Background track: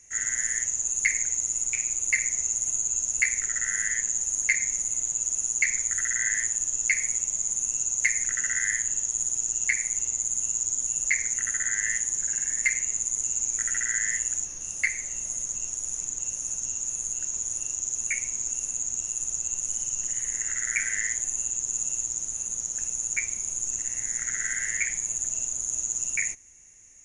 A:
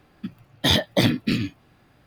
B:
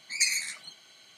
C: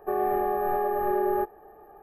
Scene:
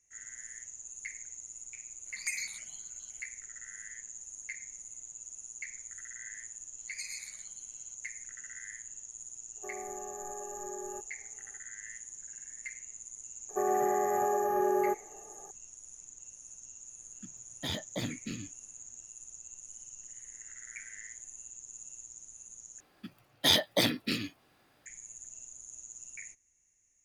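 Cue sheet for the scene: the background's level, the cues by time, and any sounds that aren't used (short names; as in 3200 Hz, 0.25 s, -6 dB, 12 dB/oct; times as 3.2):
background track -18.5 dB
2.06 add B -6.5 dB + step phaser 9.6 Hz 950–3900 Hz
6.78 add B -17.5 dB + echo 0.126 s -3.5 dB
9.56 add C -17 dB
13.49 add C -3 dB + HPF 110 Hz 24 dB/oct
16.99 add A -17 dB
22.8 replace with A -6 dB + tone controls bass -11 dB, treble +6 dB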